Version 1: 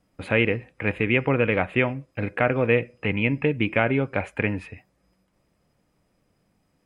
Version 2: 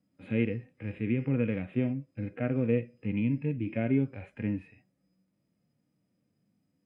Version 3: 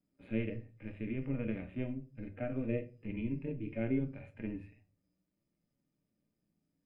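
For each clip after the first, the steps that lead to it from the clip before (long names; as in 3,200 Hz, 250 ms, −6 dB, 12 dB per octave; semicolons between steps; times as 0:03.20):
high-pass filter 80 Hz; harmonic and percussive parts rebalanced percussive −18 dB; graphic EQ with 10 bands 125 Hz +4 dB, 250 Hz +9 dB, 1,000 Hz −5 dB; level −8.5 dB
amplitude modulation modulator 120 Hz, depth 45%; on a send at −6 dB: convolution reverb RT60 0.30 s, pre-delay 3 ms; on the sum: level −5.5 dB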